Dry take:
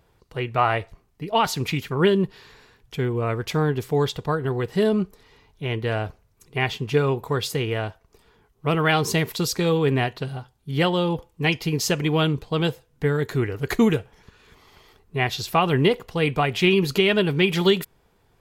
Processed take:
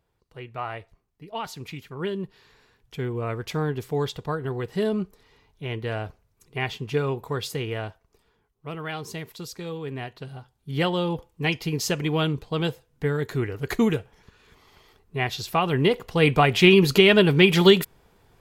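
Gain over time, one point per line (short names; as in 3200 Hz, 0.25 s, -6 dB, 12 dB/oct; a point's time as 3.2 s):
1.91 s -12 dB
3.1 s -4.5 dB
7.88 s -4.5 dB
8.67 s -13 dB
9.88 s -13 dB
10.71 s -3 dB
15.77 s -3 dB
16.26 s +3.5 dB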